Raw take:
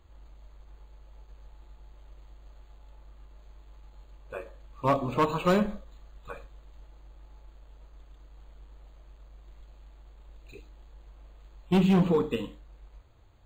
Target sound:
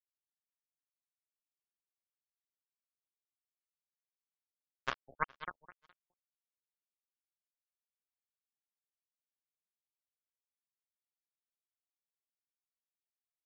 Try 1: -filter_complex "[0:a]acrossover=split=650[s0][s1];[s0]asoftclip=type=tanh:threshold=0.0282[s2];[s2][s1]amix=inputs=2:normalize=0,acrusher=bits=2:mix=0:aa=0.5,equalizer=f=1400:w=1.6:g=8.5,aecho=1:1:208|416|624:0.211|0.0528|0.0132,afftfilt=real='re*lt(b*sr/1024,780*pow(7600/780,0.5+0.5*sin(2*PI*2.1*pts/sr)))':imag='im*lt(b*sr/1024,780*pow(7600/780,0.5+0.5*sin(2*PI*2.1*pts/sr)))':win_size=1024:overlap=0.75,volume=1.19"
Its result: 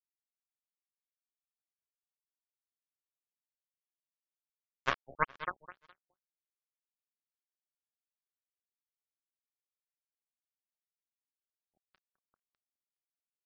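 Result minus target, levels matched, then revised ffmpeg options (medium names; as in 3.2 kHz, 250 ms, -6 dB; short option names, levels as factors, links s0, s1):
saturation: distortion -6 dB
-filter_complex "[0:a]acrossover=split=650[s0][s1];[s0]asoftclip=type=tanh:threshold=0.00841[s2];[s2][s1]amix=inputs=2:normalize=0,acrusher=bits=2:mix=0:aa=0.5,equalizer=f=1400:w=1.6:g=8.5,aecho=1:1:208|416|624:0.211|0.0528|0.0132,afftfilt=real='re*lt(b*sr/1024,780*pow(7600/780,0.5+0.5*sin(2*PI*2.1*pts/sr)))':imag='im*lt(b*sr/1024,780*pow(7600/780,0.5+0.5*sin(2*PI*2.1*pts/sr)))':win_size=1024:overlap=0.75,volume=1.19"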